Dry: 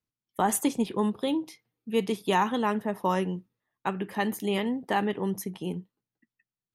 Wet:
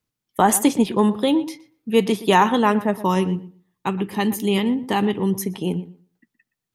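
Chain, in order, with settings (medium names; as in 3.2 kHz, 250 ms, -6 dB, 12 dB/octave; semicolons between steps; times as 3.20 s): 2.96–5.39 s: fifteen-band graphic EQ 100 Hz +4 dB, 630 Hz -9 dB, 1.6 kHz -8 dB; filtered feedback delay 120 ms, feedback 17%, low-pass 2.6 kHz, level -15.5 dB; trim +9 dB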